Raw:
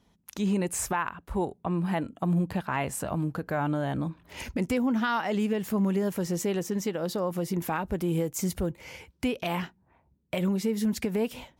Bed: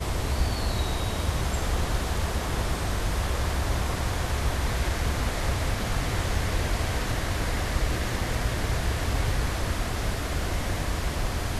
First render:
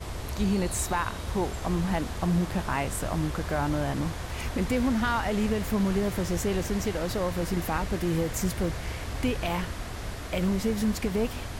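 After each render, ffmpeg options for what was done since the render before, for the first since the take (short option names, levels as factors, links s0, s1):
-filter_complex "[1:a]volume=0.422[s0];[0:a][s0]amix=inputs=2:normalize=0"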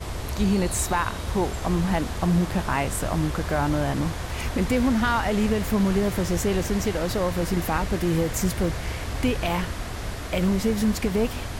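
-af "volume=1.58"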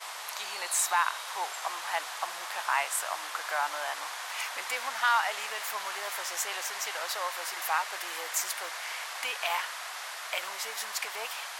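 -af "highpass=f=830:w=0.5412,highpass=f=830:w=1.3066"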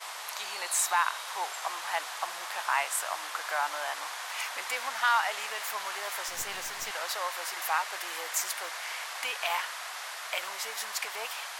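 -filter_complex "[0:a]asettb=1/sr,asplit=3[s0][s1][s2];[s0]atrim=end=6.284[s3];[s1]atrim=start=6.28:end=6.91,asetpts=PTS-STARTPTS,afade=t=in:d=0.004:c=qsin,afade=t=out:st=0.626:d=0.004:c=qsin,aeval=exprs='clip(val(0),-1,0.0133)':c=same[s4];[s2]atrim=start=6.906[s5];[s3][s4]acrossfade=d=0.004:c1=hsin:c2=qsin[s6];[s6][s5]acrossfade=d=0.004:c1=qsin:c2=hsin"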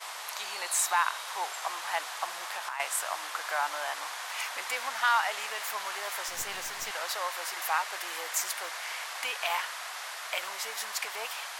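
-filter_complex "[0:a]asettb=1/sr,asplit=3[s0][s1][s2];[s0]atrim=end=2.344[s3];[s1]atrim=start=2.34:end=2.8,asetpts=PTS-STARTPTS,afade=t=in:d=0.004:c=qsin,afade=t=out:st=0.456:d=0.004:c=qsin,acompressor=threshold=0.0282:ratio=12:attack=3.2:release=140:knee=1:detection=peak[s4];[s2]atrim=start=2.796[s5];[s3][s4]acrossfade=d=0.004:c1=hsin:c2=qsin[s6];[s6][s5]acrossfade=d=0.004:c1=qsin:c2=hsin"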